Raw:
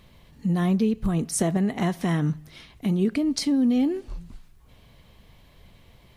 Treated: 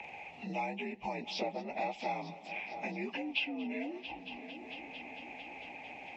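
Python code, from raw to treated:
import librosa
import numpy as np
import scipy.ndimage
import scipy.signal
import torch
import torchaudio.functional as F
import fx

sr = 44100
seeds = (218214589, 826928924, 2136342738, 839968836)

y = fx.partial_stretch(x, sr, pct=84)
y = fx.double_bandpass(y, sr, hz=1400.0, octaves=1.6)
y = fx.hpss(y, sr, part='harmonic', gain_db=-7)
y = fx.echo_heads(y, sr, ms=225, heads='first and third', feedback_pct=61, wet_db=-21.5)
y = fx.band_squash(y, sr, depth_pct=70)
y = F.gain(torch.from_numpy(y), 12.5).numpy()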